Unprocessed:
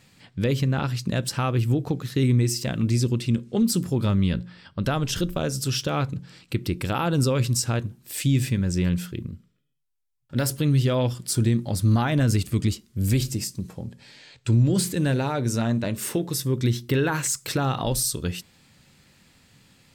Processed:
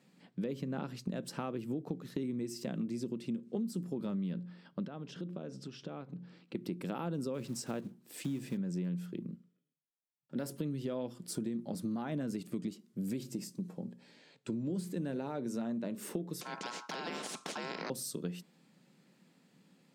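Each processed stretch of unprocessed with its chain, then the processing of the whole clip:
0:04.85–0:06.55: low-pass filter 4,400 Hz + downward compressor 10 to 1, threshold −31 dBFS
0:07.34–0:08.59: one scale factor per block 5 bits + high-shelf EQ 11,000 Hz −3.5 dB
0:16.41–0:17.90: high-frequency loss of the air 150 metres + ring modulation 1,200 Hz + every bin compressed towards the loudest bin 4 to 1
whole clip: Chebyshev high-pass filter 170 Hz, order 4; tilt shelving filter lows +6 dB, about 910 Hz; downward compressor, threshold −25 dBFS; level −8.5 dB

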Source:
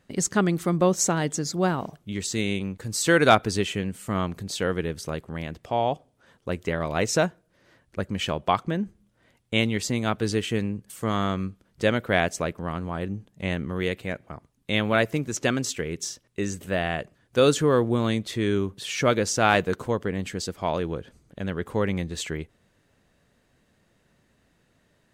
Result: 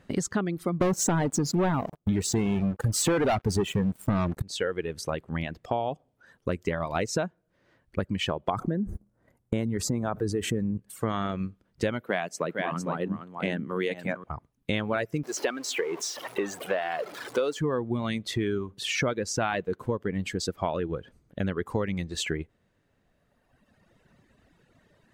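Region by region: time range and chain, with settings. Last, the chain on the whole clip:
0:00.81–0:04.42: parametric band 3,000 Hz −9 dB 2.1 octaves + leveller curve on the samples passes 5
0:08.50–0:10.78: noise gate −57 dBFS, range −37 dB + parametric band 3,000 Hz −15 dB 1.6 octaves + envelope flattener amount 70%
0:12.01–0:14.24: high-pass filter 150 Hz 24 dB per octave + de-essing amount 30% + single-tap delay 456 ms −7.5 dB
0:15.23–0:17.59: converter with a step at zero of −28.5 dBFS + Chebyshev high-pass filter 440 Hz + high-shelf EQ 5,600 Hz −6.5 dB
whole clip: reverb reduction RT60 2 s; high-shelf EQ 3,800 Hz −8.5 dB; downward compressor 6 to 1, threshold −32 dBFS; level +7 dB

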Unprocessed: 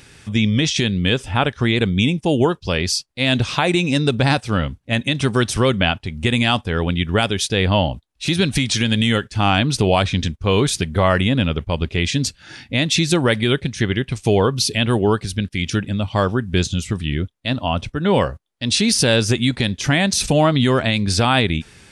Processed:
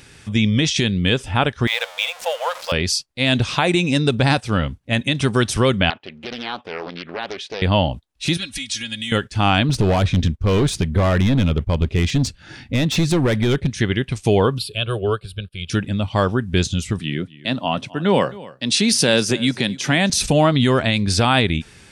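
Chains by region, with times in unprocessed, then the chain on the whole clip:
0:01.67–0:02.72: converter with a step at zero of −25.5 dBFS + linear-phase brick-wall high-pass 480 Hz + linearly interpolated sample-rate reduction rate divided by 2×
0:05.90–0:07.62: downward compressor 16 to 1, threshold −18 dBFS + band-pass filter 330–2,700 Hz + highs frequency-modulated by the lows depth 0.51 ms
0:08.37–0:09.12: guitar amp tone stack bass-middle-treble 5-5-5 + comb filter 3.6 ms, depth 83%
0:09.69–0:13.70: gain into a clipping stage and back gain 15.5 dB + spectral tilt −1.5 dB per octave
0:14.58–0:15.70: phaser with its sweep stopped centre 1,300 Hz, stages 8 + expander for the loud parts, over −31 dBFS
0:16.99–0:20.10: high-pass filter 140 Hz 24 dB per octave + single-tap delay 262 ms −19.5 dB
whole clip: no processing

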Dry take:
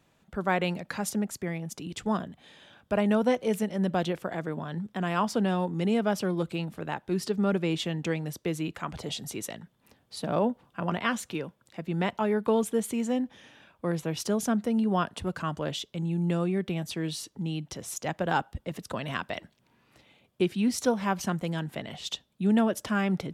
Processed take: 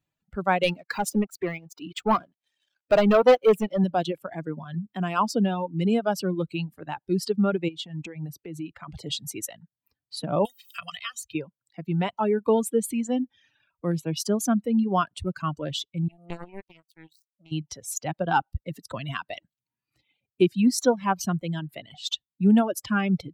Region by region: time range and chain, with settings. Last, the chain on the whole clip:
0:00.63–0:03.84: bass and treble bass −10 dB, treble −9 dB + leveller curve on the samples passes 3 + expander for the loud parts, over −36 dBFS
0:07.68–0:08.88: high-shelf EQ 3,400 Hz −6 dB + downward compressor 16 to 1, threshold −31 dBFS
0:10.45–0:11.35: guitar amp tone stack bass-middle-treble 10-0-10 + comb filter 1.6 ms, depth 48% + multiband upward and downward compressor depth 100%
0:16.08–0:17.52: power curve on the samples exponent 3 + one half of a high-frequency compander encoder only
whole clip: spectral dynamics exaggerated over time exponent 1.5; reverb reduction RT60 0.84 s; dynamic equaliser 1,900 Hz, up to −7 dB, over −56 dBFS, Q 3.6; level +7.5 dB

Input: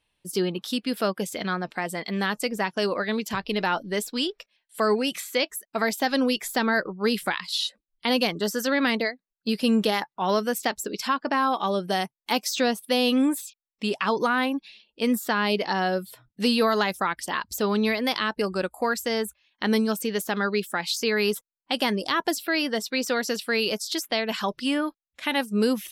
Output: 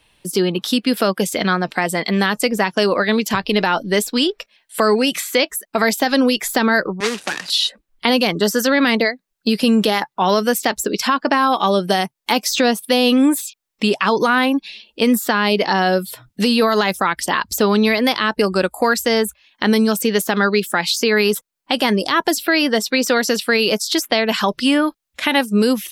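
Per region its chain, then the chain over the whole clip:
0:07.00–0:07.50: running median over 41 samples + meter weighting curve ITU-R 468 + multiband upward and downward compressor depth 70%
whole clip: automatic gain control gain up to 4.5 dB; boost into a limiter +10.5 dB; multiband upward and downward compressor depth 40%; level −5.5 dB

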